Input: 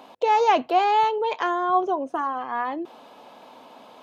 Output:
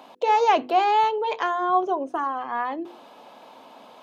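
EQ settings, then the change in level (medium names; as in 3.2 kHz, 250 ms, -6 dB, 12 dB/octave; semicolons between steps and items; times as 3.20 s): high-pass 96 Hz; hum notches 50/100/150/200/250/300/350/400/450/500 Hz; 0.0 dB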